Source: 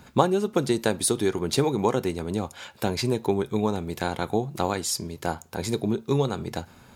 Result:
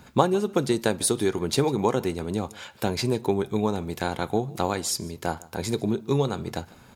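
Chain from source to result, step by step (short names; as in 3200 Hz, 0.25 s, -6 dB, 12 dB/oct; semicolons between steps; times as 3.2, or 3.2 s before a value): echo 0.149 s -22.5 dB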